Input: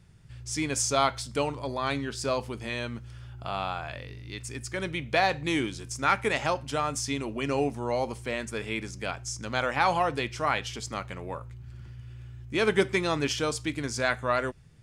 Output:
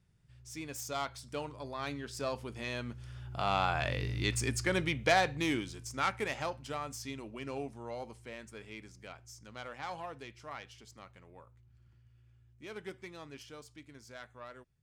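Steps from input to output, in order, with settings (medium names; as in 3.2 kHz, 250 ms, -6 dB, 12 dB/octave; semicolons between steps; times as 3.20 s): self-modulated delay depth 0.076 ms; Doppler pass-by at 4.14 s, 7 m/s, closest 2.4 m; trim +7.5 dB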